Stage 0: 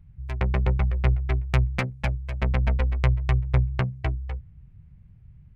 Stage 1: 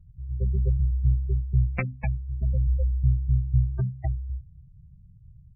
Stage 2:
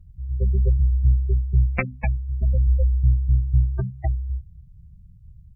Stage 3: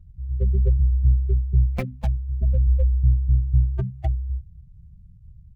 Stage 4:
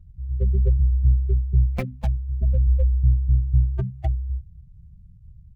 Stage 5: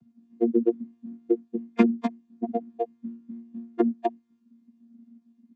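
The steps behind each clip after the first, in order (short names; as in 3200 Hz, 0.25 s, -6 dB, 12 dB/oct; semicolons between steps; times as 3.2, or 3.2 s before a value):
notches 50/100/150/200/250 Hz; spectral gate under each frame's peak -15 dB strong
bell 130 Hz -7 dB; gain +6 dB
median filter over 25 samples
nothing audible
chord vocoder bare fifth, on A#3; gain +3 dB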